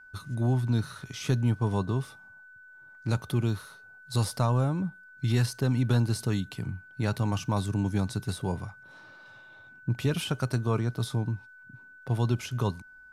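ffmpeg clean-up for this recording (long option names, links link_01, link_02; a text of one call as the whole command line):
ffmpeg -i in.wav -af "bandreject=frequency=1500:width=30" out.wav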